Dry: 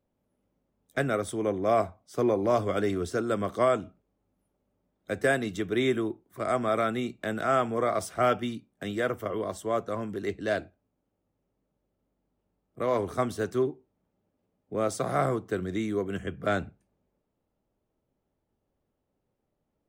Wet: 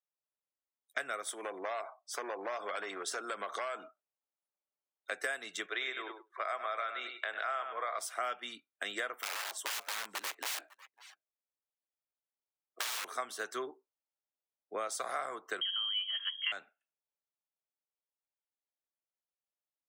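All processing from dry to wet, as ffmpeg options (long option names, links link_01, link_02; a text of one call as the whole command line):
ffmpeg -i in.wav -filter_complex "[0:a]asettb=1/sr,asplit=3[link_01][link_02][link_03];[link_01]atrim=end=1.264[link_04];[link_02]atrim=start=1.26:end=5.12,asetpts=PTS-STARTPTS,afade=type=in:duration=0.004:curve=qsin,afade=type=out:start_time=3.856:duration=0.004:curve=qsin,acompressor=threshold=-32dB:ratio=5:attack=3.2:release=140:knee=1:detection=peak,aeval=exprs='0.0355*(abs(mod(val(0)/0.0355+3,4)-2)-1)':channel_layout=same,equalizer=frequency=720:width_type=o:width=2.4:gain=2.5[link_05];[link_03]atrim=start=5.116[link_06];[link_04][link_05]acrossfade=duration=0.004:curve1=hsin:curve2=qsin[link_07];[link_07][link_06]acrossfade=duration=0.004:curve1=qsin:curve2=hsin,asettb=1/sr,asplit=3[link_08][link_09][link_10];[link_08]atrim=end=5.664[link_11];[link_09]atrim=start=5.66:end=7.98,asetpts=PTS-STARTPTS,afade=type=in:duration=0.004:curve=qsin,afade=type=out:start_time=2.316:duration=0.004:curve=qsin,highpass=460,lowpass=5100,aecho=1:1:100|200|300:0.335|0.0636|0.0121,atrim=end_sample=102312[link_12];[link_10]atrim=start=7.976[link_13];[link_11][link_12]acrossfade=duration=0.004:curve1=hsin:curve2=qsin[link_14];[link_14][link_13]acrossfade=duration=0.004:curve1=qsin:curve2=hsin,asettb=1/sr,asplit=3[link_15][link_16][link_17];[link_15]atrim=end=9.154[link_18];[link_16]atrim=start=9.15:end=13.05,asetpts=PTS-STARTPTS,afade=type=in:duration=0.004:curve=qsin,afade=type=out:start_time=3.896:duration=0.004:curve=qsin,aeval=exprs='(mod(29.9*val(0)+1,2)-1)/29.9':channel_layout=same,aecho=1:1:550:0.0841,atrim=end_sample=171990[link_19];[link_17]atrim=start=13.046[link_20];[link_18][link_19]acrossfade=duration=0.004:curve1=hsin:curve2=qsin[link_21];[link_21][link_20]acrossfade=duration=0.004:curve1=qsin:curve2=hsin,asettb=1/sr,asplit=3[link_22][link_23][link_24];[link_22]atrim=end=15.614[link_25];[link_23]atrim=start=15.61:end=16.52,asetpts=PTS-STARTPTS,afade=type=in:duration=0.004:curve=qsin,afade=type=out:start_time=0.906:duration=0.004:curve=qsin,aecho=1:1:5:0.49,atrim=end_sample=40131,lowpass=frequency=2900:width_type=q:width=0.5098,lowpass=frequency=2900:width_type=q:width=0.6013,lowpass=frequency=2900:width_type=q:width=0.9,lowpass=frequency=2900:width_type=q:width=2.563,afreqshift=-3400[link_26];[link_24]atrim=start=16.516[link_27];[link_25][link_26]acrossfade=duration=0.004:curve1=hsin:curve2=qsin[link_28];[link_28][link_27]acrossfade=duration=0.004:curve1=qsin:curve2=hsin,highpass=990,afftdn=noise_reduction=25:noise_floor=-58,acompressor=threshold=-43dB:ratio=6,volume=8.5dB" out.wav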